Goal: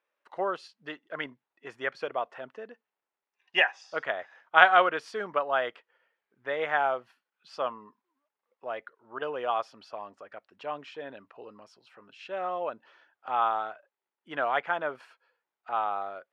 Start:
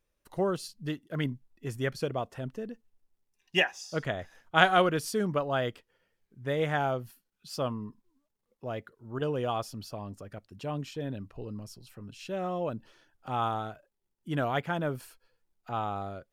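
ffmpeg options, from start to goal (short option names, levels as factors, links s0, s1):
-af "highpass=750,lowpass=2200,volume=2.11"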